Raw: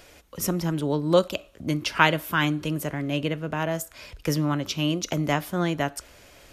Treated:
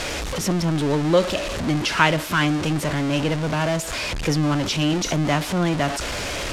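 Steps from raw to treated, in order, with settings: jump at every zero crossing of -21 dBFS; low-pass 7.2 kHz 12 dB/octave

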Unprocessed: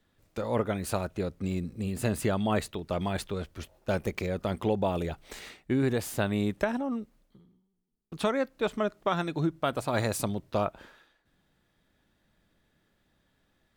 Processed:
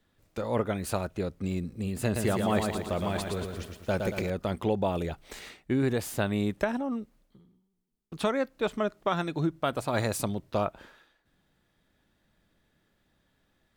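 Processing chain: 2.04–4.30 s: bit-crushed delay 115 ms, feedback 55%, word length 9-bit, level -4.5 dB

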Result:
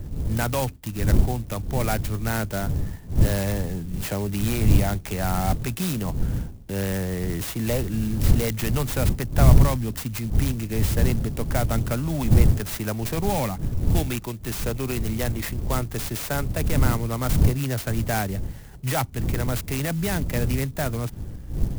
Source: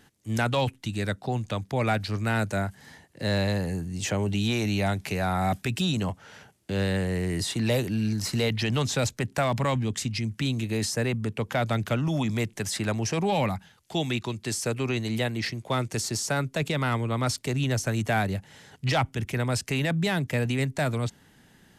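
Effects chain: wind noise 100 Hz -24 dBFS; sampling jitter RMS 0.069 ms

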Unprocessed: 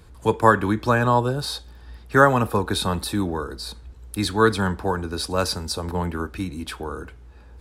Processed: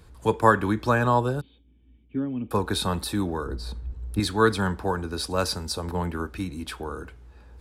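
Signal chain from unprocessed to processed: 1.41–2.51 s: cascade formant filter i; 3.46–4.20 s: tilt EQ -2.5 dB/octave; trim -2.5 dB

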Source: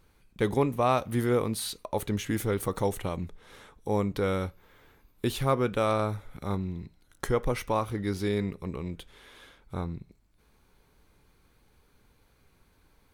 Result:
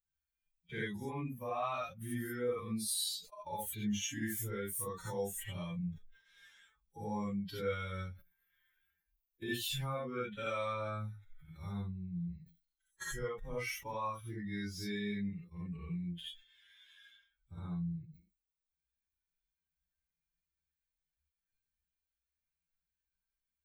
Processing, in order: expander on every frequency bin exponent 2; bass shelf 240 Hz +4.5 dB; time stretch by phase-locked vocoder 1.8×; peak limiter -22 dBFS, peak gain reduction 9 dB; tilt shelf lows -6.5 dB, about 780 Hz; compression 2.5:1, threshold -51 dBFS, peak gain reduction 16 dB; gated-style reverb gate 100 ms rising, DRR -6.5 dB; decay stretcher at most 150 dB/s; trim +2 dB

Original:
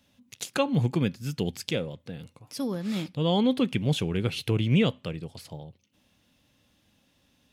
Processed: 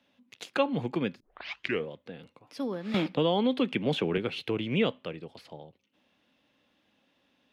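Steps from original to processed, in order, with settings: 1.20 s: tape start 0.67 s; three-band isolator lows -17 dB, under 220 Hz, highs -17 dB, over 3.9 kHz; 2.94–4.18 s: three bands compressed up and down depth 100%

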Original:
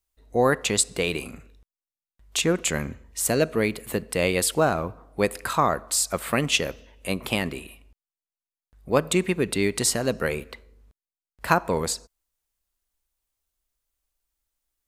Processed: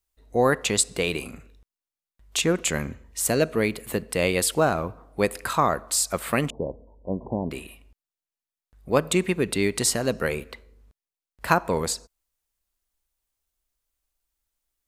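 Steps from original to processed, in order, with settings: 6.50–7.51 s: steep low-pass 1 kHz 96 dB/octave

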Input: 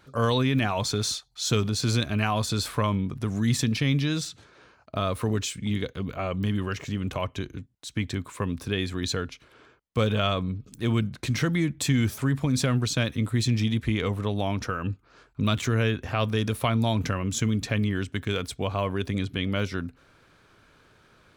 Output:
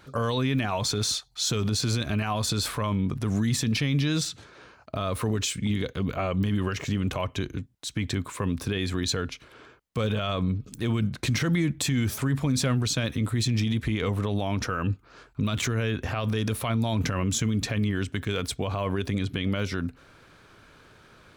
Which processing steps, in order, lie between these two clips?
peak limiter -21.5 dBFS, peak gain reduction 11 dB; trim +4.5 dB

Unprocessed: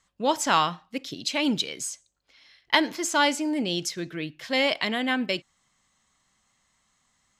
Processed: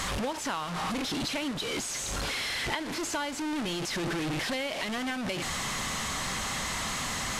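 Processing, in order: one-bit delta coder 64 kbps, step -20.5 dBFS; treble shelf 6.5 kHz -9 dB; compression 12:1, threshold -25 dBFS, peak gain reduction 10.5 dB; trim -3.5 dB

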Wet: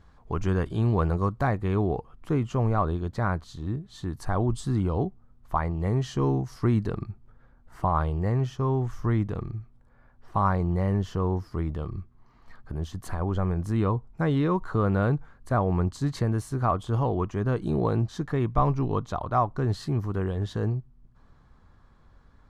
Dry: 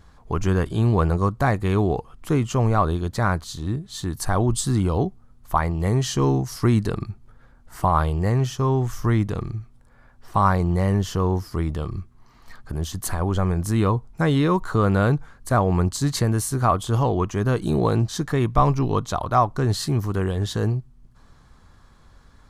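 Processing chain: low-pass 3.4 kHz 6 dB/octave, from 1.47 s 1.8 kHz; trim -4.5 dB

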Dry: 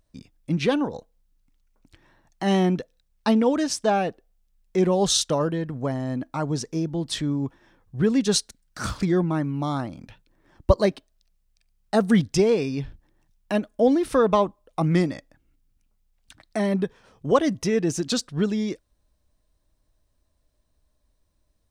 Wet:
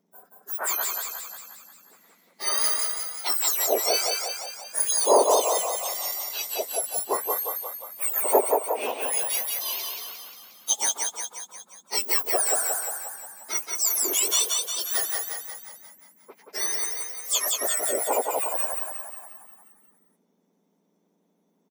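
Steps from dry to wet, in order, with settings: spectrum inverted on a logarithmic axis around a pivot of 1.9 kHz; frequency-shifting echo 178 ms, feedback 57%, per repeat +32 Hz, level -3 dB; trim +1 dB

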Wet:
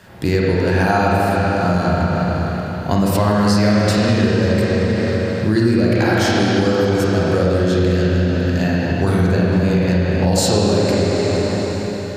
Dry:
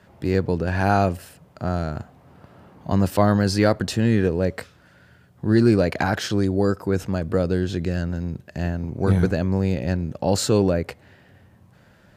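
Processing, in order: treble shelf 2.6 kHz +8.5 dB; reverberation RT60 3.7 s, pre-delay 34 ms, DRR -6 dB; compression 4:1, threshold -20 dBFS, peak gain reduction 12 dB; trim +6.5 dB

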